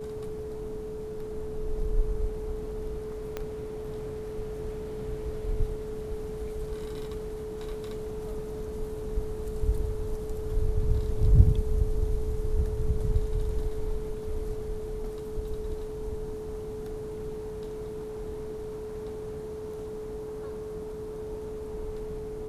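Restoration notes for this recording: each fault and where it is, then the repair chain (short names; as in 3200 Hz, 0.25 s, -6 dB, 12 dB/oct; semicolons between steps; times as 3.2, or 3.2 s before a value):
tone 430 Hz -35 dBFS
3.37 pop -19 dBFS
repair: de-click; notch 430 Hz, Q 30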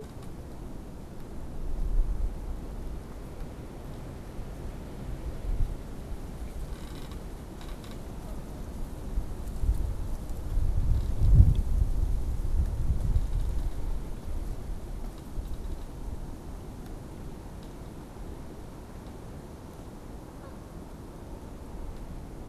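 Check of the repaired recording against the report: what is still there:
3.37 pop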